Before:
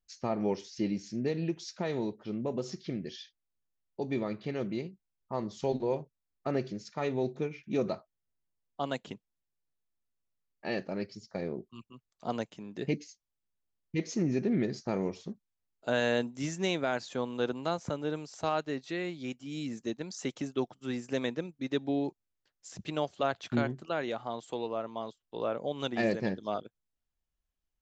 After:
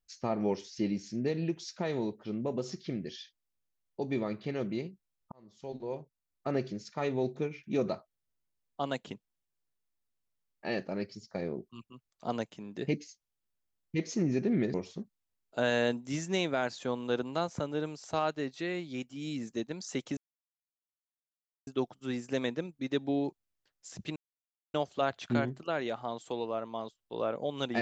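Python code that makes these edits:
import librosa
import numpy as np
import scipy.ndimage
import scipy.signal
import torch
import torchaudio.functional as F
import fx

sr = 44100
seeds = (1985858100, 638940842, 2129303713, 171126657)

y = fx.edit(x, sr, fx.fade_in_span(start_s=5.32, length_s=1.27),
    fx.cut(start_s=14.74, length_s=0.3),
    fx.insert_silence(at_s=20.47, length_s=1.5),
    fx.insert_silence(at_s=22.96, length_s=0.58), tone=tone)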